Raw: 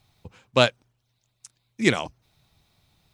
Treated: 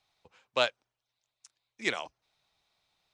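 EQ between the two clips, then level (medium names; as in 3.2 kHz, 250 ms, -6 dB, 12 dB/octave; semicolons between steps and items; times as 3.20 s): three-band isolator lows -13 dB, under 440 Hz, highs -13 dB, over 8 kHz; peaking EQ 99 Hz -5.5 dB 1.3 oct; -7.0 dB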